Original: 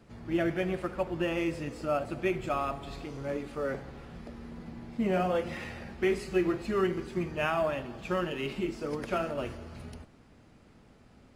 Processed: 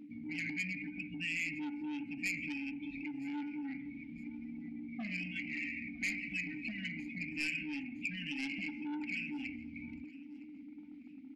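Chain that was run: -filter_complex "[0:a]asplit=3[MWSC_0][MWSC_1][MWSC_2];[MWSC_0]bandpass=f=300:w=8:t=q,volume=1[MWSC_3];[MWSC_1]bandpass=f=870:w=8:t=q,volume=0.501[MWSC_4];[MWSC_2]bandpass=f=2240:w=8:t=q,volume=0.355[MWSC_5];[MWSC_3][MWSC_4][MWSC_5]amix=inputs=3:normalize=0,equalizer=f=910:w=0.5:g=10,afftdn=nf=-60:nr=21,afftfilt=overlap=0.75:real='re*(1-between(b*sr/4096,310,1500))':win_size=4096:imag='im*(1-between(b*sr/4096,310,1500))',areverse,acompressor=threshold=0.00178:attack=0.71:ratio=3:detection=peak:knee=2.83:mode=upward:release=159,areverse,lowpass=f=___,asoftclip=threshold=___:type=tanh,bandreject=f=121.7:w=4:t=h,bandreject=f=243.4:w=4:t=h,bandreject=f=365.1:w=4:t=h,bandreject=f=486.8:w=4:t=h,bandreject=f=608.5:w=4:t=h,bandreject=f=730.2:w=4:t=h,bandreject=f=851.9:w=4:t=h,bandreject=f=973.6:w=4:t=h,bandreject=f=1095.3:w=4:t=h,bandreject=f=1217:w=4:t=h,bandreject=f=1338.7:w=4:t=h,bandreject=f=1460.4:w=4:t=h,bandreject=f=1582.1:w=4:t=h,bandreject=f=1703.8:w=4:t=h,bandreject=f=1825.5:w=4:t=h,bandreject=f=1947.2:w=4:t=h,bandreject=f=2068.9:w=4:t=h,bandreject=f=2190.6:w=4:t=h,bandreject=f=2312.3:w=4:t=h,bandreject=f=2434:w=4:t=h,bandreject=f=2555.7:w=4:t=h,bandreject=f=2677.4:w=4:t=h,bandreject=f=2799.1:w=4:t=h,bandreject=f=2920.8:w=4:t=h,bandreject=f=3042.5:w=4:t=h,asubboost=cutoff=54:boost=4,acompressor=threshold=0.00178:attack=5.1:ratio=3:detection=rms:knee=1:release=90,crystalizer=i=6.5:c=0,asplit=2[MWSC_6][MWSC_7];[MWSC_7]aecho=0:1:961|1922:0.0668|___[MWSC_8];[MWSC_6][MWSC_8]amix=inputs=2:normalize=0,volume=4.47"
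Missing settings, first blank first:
4700, 0.0106, 0.0214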